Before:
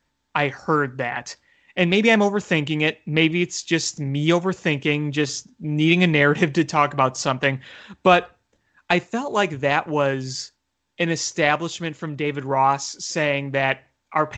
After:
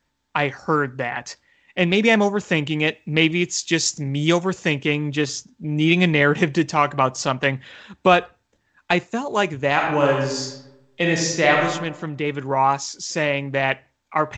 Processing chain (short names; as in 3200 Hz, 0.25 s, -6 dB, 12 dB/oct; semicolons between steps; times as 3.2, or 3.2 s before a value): 2.94–4.73 high shelf 4800 Hz +7 dB; 9.72–11.65 reverb throw, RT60 0.94 s, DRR -0.5 dB